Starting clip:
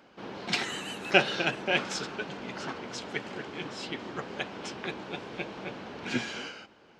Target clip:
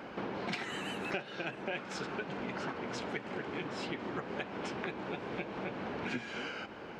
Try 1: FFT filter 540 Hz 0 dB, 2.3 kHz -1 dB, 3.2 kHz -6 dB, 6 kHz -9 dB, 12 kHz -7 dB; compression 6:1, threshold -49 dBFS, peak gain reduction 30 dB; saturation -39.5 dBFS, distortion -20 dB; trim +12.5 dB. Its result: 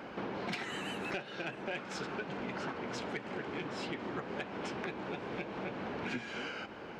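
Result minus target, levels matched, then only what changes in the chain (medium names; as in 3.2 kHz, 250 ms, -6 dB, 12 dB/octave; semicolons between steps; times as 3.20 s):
saturation: distortion +13 dB
change: saturation -31 dBFS, distortion -33 dB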